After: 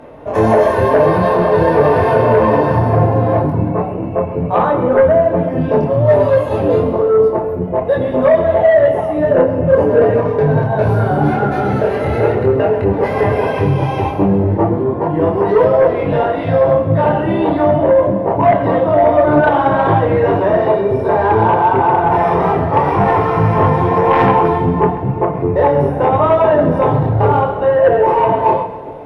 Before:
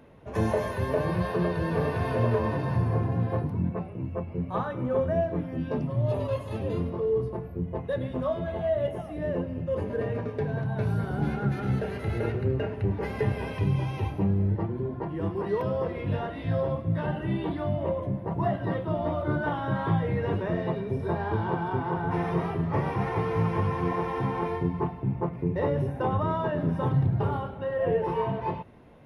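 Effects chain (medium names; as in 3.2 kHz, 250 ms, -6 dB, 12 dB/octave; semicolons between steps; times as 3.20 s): peaking EQ 680 Hz +12.5 dB 2.1 oct; in parallel at +1.5 dB: peak limiter -13.5 dBFS, peak gain reduction 9.5 dB; on the sum: chorus voices 6, 0.86 Hz, delay 24 ms, depth 4 ms; sine folder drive 5 dB, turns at -1.5 dBFS; on a send: two-band feedback delay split 640 Hz, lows 367 ms, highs 132 ms, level -14.5 dB; on the sum: FDN reverb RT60 0.75 s, low-frequency decay 1.05×, high-frequency decay 0.75×, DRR 9.5 dB; trim -3.5 dB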